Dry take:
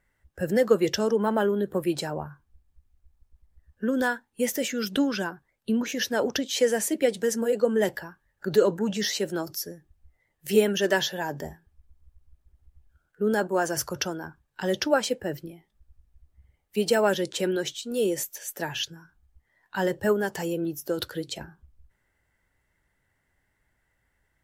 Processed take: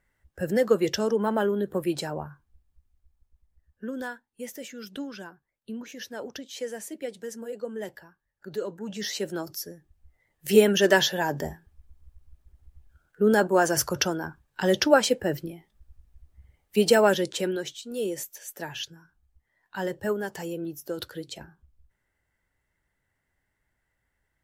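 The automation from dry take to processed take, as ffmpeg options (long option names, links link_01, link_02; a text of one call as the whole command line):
ffmpeg -i in.wav -af "volume=14.5dB,afade=type=out:start_time=2.2:duration=2.09:silence=0.298538,afade=type=in:start_time=8.77:duration=0.43:silence=0.354813,afade=type=in:start_time=9.72:duration=1.08:silence=0.473151,afade=type=out:start_time=16.87:duration=0.79:silence=0.375837" out.wav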